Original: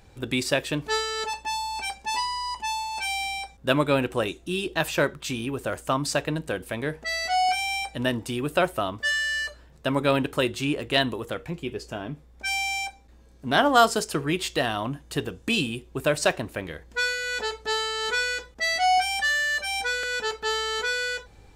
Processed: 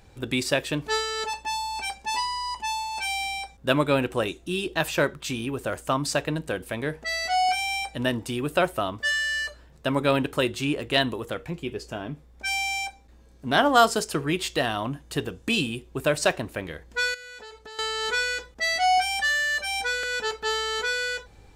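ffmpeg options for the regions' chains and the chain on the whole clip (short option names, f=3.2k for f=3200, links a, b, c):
-filter_complex "[0:a]asettb=1/sr,asplit=3[a][b][c];[a]atrim=end=17.144[d];[b]atrim=start=17.14:end=17.79,asetpts=PTS-STARTPTS,afade=t=in:d=0.004:c=qsin,afade=t=out:st=0.646:d=0.004:c=qsin,agate=range=-6dB:threshold=-44dB:ratio=16:release=100:detection=peak,acompressor=threshold=-41dB:ratio=5:attack=3.2:release=140:knee=1:detection=peak[e];[c]atrim=start=17.786[f];[d][e]acrossfade=d=0.004:c1=hsin:c2=qsin[g];[g][f]acrossfade=d=0.004:c1=qsin:c2=hsin"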